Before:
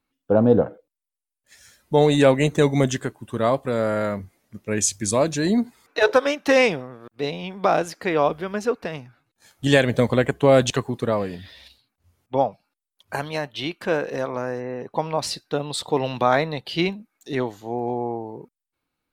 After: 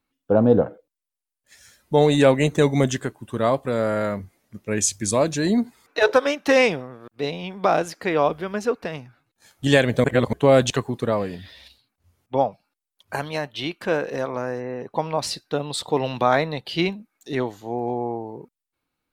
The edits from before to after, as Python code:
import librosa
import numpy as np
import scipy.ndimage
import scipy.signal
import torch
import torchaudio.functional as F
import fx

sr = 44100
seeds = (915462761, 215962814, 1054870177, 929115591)

y = fx.edit(x, sr, fx.reverse_span(start_s=10.04, length_s=0.29), tone=tone)